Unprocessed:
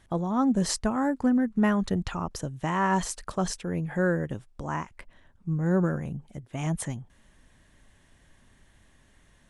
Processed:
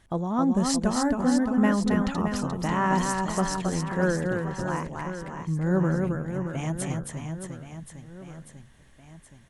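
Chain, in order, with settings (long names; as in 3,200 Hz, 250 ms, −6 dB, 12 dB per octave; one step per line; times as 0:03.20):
reverse bouncing-ball delay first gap 270 ms, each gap 1.3×, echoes 5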